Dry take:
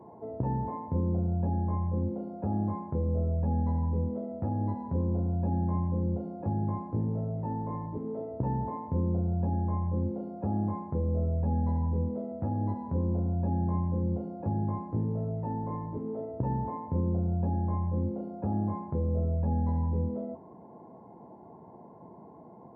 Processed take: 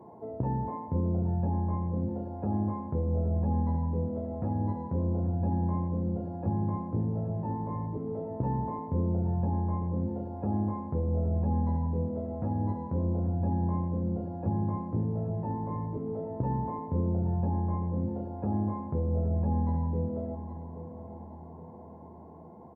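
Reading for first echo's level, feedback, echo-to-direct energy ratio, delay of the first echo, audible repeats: −12.0 dB, 44%, −11.0 dB, 820 ms, 4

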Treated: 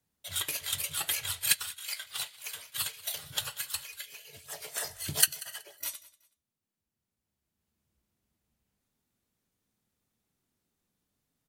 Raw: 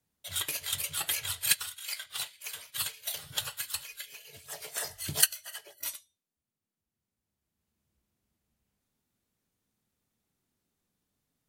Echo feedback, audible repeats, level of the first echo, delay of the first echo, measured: 26%, 2, −20.5 dB, 187 ms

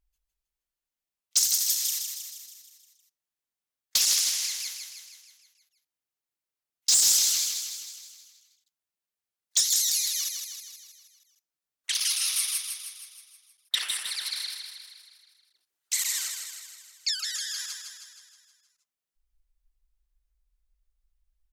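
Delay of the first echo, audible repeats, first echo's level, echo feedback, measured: 158 ms, 6, −6.0 dB, 57%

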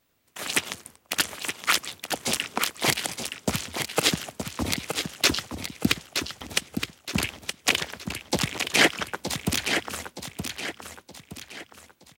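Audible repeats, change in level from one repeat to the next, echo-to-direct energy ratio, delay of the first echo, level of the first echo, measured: 4, −7.5 dB, −6.0 dB, 920 ms, −7.0 dB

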